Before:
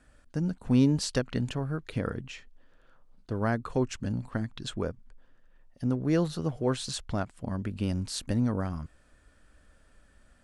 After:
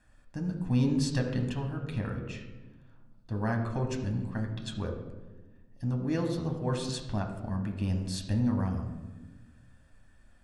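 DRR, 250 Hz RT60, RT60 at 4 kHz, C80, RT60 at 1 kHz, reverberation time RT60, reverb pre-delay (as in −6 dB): 2.0 dB, 1.9 s, 0.75 s, 8.5 dB, 1.1 s, 1.2 s, 10 ms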